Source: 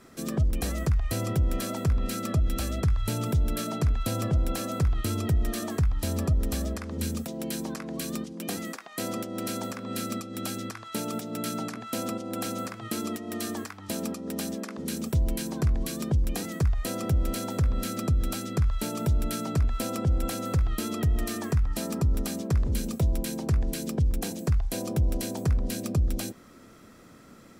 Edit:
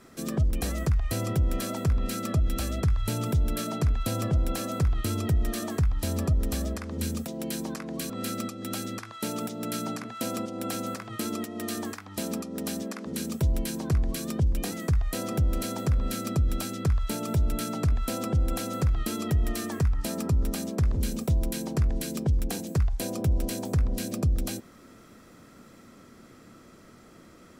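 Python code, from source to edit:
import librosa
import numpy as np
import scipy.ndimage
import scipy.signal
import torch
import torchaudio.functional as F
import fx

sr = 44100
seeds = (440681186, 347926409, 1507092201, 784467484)

y = fx.edit(x, sr, fx.cut(start_s=8.1, length_s=1.72), tone=tone)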